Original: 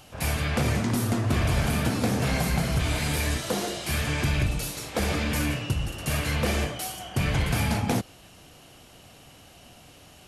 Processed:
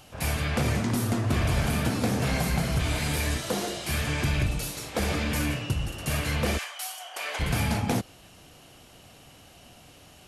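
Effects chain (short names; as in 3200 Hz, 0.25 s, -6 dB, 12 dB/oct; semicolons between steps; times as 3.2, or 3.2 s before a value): 6.57–7.39 HPF 1000 Hz -> 480 Hz 24 dB/oct; gain -1 dB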